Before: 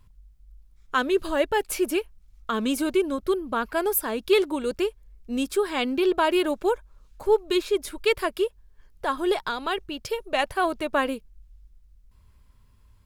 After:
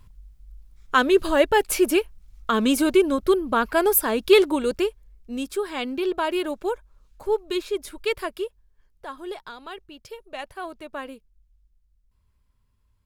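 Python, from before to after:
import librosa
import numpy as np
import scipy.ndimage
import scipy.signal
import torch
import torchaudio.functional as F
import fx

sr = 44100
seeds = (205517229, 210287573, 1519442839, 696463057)

y = fx.gain(x, sr, db=fx.line((4.51, 5.0), (5.36, -3.0), (8.21, -3.0), (9.13, -10.5)))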